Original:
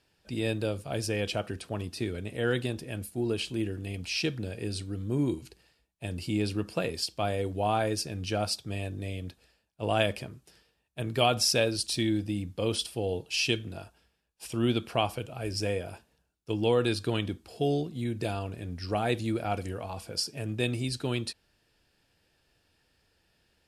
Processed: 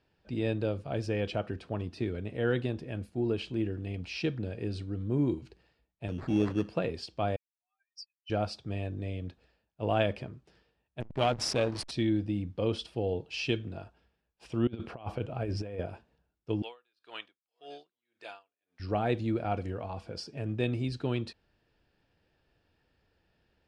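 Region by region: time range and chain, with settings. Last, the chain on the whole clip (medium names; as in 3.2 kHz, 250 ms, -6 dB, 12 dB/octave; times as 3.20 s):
6.08–6.69 s: high-pass 210 Hz 6 dB/octave + bass shelf 490 Hz +6 dB + sample-rate reducer 3 kHz
7.36–8.30 s: spectral contrast enhancement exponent 3.4 + steep high-pass 1.9 kHz 48 dB/octave
11.00–11.91 s: peaking EQ 10 kHz +13 dB 1.3 oct + hysteresis with a dead band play -24 dBFS + transformer saturation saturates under 1 kHz
14.67–15.86 s: peaking EQ 6 kHz -4 dB 2.5 oct + compressor with a negative ratio -34 dBFS, ratio -0.5
16.62–18.80 s: high-pass 1.1 kHz + delay 850 ms -21 dB + logarithmic tremolo 1.8 Hz, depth 39 dB
whole clip: low-pass 4.7 kHz 12 dB/octave; treble shelf 2.1 kHz -8.5 dB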